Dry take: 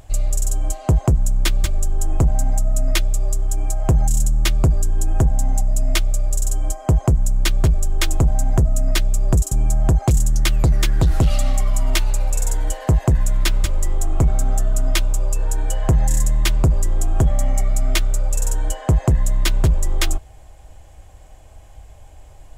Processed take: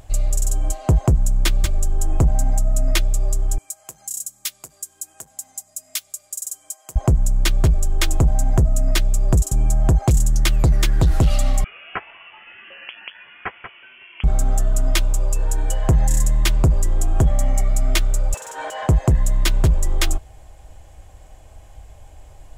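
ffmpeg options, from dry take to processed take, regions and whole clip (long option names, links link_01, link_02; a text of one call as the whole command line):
ffmpeg -i in.wav -filter_complex "[0:a]asettb=1/sr,asplit=3[link_01][link_02][link_03];[link_01]atrim=end=3.584[link_04];[link_02]atrim=start=3.58:end=6.96,asetpts=PTS-STARTPTS,afade=type=in:duration=0.004:curve=qsin,afade=type=out:start_time=3.376:duration=0.004:curve=qsin,highpass=89,aderivative[link_05];[link_03]atrim=start=6.956[link_06];[link_04][link_05]acrossfade=duration=0.004:curve1=hsin:curve2=qsin[link_07];[link_07][link_06]acrossfade=duration=0.004:curve1=qsin:curve2=hsin,asettb=1/sr,asplit=3[link_08][link_09][link_10];[link_08]atrim=end=11.644[link_11];[link_09]atrim=start=11.64:end=14.24,asetpts=PTS-STARTPTS,afade=type=in:duration=0.004:curve=qsin,afade=type=out:start_time=2.596:duration=0.004:curve=qsin,highpass=1100,lowpass=frequency=3000:width_type=q:width=0.5098,lowpass=frequency=3000:width_type=q:width=0.6013,lowpass=frequency=3000:width_type=q:width=0.9,lowpass=frequency=3000:width_type=q:width=2.563,afreqshift=-3500[link_12];[link_10]atrim=start=14.236[link_13];[link_11][link_12]acrossfade=duration=0.004:curve1=hsin:curve2=qsin[link_14];[link_14][link_13]acrossfade=duration=0.004:curve1=qsin:curve2=hsin,asettb=1/sr,asplit=3[link_15][link_16][link_17];[link_15]atrim=end=18.344[link_18];[link_16]atrim=start=18.34:end=18.87,asetpts=PTS-STARTPTS,afade=type=in:duration=0.004:curve=qsin,afade=type=out:start_time=0.526:duration=0.004:curve=qsin,highpass=590,acompressor=threshold=-34dB:ratio=4:attack=3.2:release=140:knee=1:detection=peak,asplit=2[link_19][link_20];[link_20]highpass=frequency=720:poles=1,volume=21dB,asoftclip=type=tanh:threshold=-15dB[link_21];[link_19][link_21]amix=inputs=2:normalize=0,lowpass=frequency=1800:poles=1,volume=-6dB[link_22];[link_17]atrim=start=18.866[link_23];[link_18][link_22]acrossfade=duration=0.004:curve1=hsin:curve2=qsin[link_24];[link_24][link_23]acrossfade=duration=0.004:curve1=qsin:curve2=hsin" out.wav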